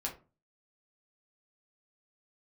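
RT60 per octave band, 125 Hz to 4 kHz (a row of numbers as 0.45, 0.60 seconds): 0.50, 0.45, 0.35, 0.30, 0.25, 0.20 seconds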